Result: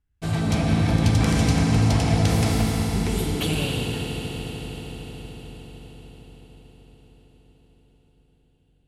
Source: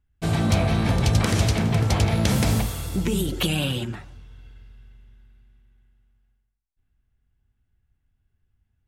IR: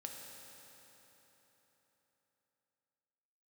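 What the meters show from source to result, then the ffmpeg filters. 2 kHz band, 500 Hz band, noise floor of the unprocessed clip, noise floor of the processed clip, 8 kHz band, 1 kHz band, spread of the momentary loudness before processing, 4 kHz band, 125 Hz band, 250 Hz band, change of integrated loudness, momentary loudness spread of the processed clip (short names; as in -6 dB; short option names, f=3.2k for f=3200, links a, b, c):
0.0 dB, 0.0 dB, -74 dBFS, -62 dBFS, -0.5 dB, +0.5 dB, 6 LU, -0.5 dB, +1.0 dB, +2.0 dB, 0.0 dB, 18 LU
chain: -filter_complex "[1:a]atrim=start_sample=2205,asetrate=23814,aresample=44100[a];[0:a][a]afir=irnorm=-1:irlink=0,volume=-1.5dB"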